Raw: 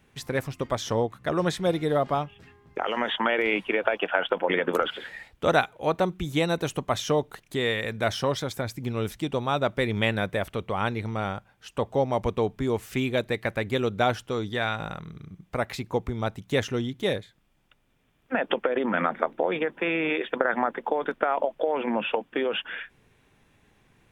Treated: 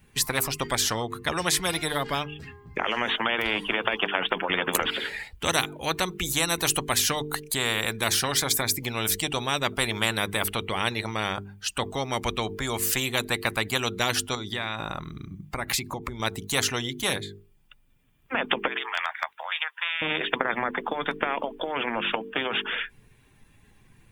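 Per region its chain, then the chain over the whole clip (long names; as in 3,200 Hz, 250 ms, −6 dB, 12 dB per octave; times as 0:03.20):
0:14.35–0:16.20: parametric band 470 Hz −7.5 dB 0.27 octaves + downward compressor, threshold −33 dBFS
0:18.68–0:20.02: Bessel high-pass filter 1,500 Hz, order 8 + hard clipping −18 dBFS
whole clip: spectral dynamics exaggerated over time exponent 1.5; mains-hum notches 50/100/150/200/250/300/350/400/450 Hz; every bin compressed towards the loudest bin 4 to 1; level +4 dB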